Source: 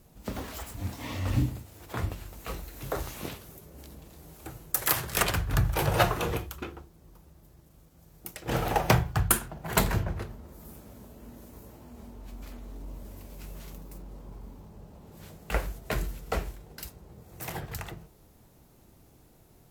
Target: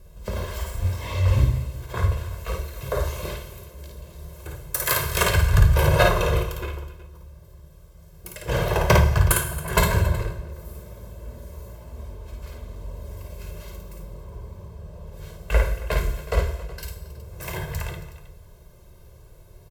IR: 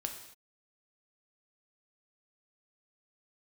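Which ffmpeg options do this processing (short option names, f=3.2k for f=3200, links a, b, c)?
-filter_complex "[0:a]highshelf=f=6.9k:g=-10.5,aecho=1:1:1.9:0.89,aecho=1:1:54|274|370:0.668|0.126|0.126,asplit=2[a][b];[1:a]atrim=start_sample=2205,lowshelf=f=65:g=10.5,highshelf=f=6.6k:g=8.5[c];[b][c]afir=irnorm=-1:irlink=0,volume=4dB[d];[a][d]amix=inputs=2:normalize=0,volume=-6dB"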